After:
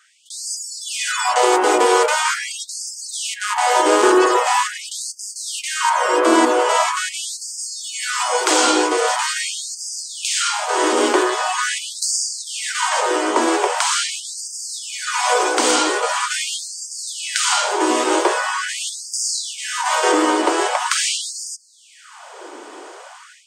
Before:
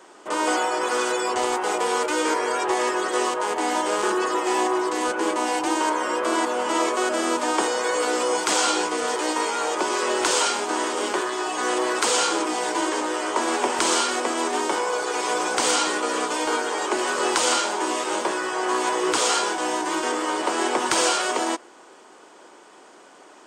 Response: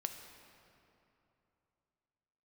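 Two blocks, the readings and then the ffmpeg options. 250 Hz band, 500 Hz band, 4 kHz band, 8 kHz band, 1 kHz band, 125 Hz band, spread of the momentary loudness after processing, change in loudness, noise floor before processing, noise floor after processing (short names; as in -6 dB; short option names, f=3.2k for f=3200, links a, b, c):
+3.5 dB, +3.5 dB, +5.0 dB, +5.5 dB, +4.0 dB, n/a, 12 LU, +4.5 dB, -49 dBFS, -42 dBFS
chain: -af "dynaudnorm=f=210:g=3:m=12dB,equalizer=f=150:w=0.74:g=10.5,afftfilt=real='re*gte(b*sr/1024,240*pow(4700/240,0.5+0.5*sin(2*PI*0.43*pts/sr)))':imag='im*gte(b*sr/1024,240*pow(4700/240,0.5+0.5*sin(2*PI*0.43*pts/sr)))':win_size=1024:overlap=0.75,volume=-1.5dB"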